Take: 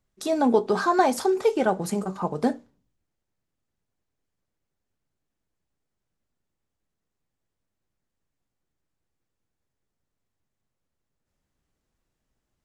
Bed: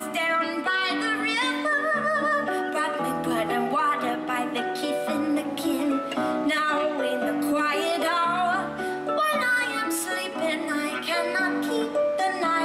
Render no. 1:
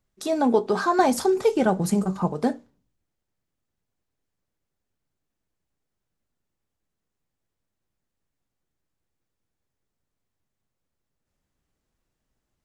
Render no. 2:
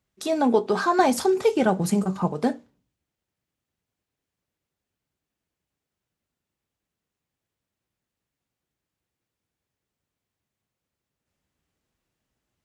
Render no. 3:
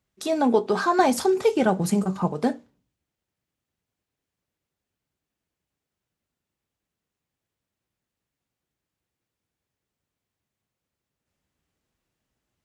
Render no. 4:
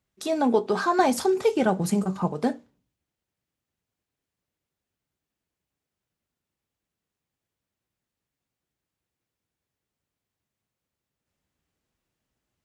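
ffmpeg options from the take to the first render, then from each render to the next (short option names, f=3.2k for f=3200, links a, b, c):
-filter_complex "[0:a]asettb=1/sr,asplit=3[a][b][c];[a]atrim=end=0.994[d];[b]atrim=start=0.99:end=2.32,asetpts=PTS-STARTPTS,afade=t=in:d=0.004:c=qsin,afade=t=out:st=1.326:d=0.004:c=qsin,bass=f=250:g=9,treble=f=4k:g=3[e];[c]atrim=start=2.316[f];[d][e]acrossfade=d=0.004:c1=hsin:c2=qsin[g];[g][f]acrossfade=d=0.004:c1=qsin:c2=hsin"
-af "highpass=55,equalizer=f=2.7k:w=1.3:g=3.5"
-af anull
-af "volume=-1.5dB"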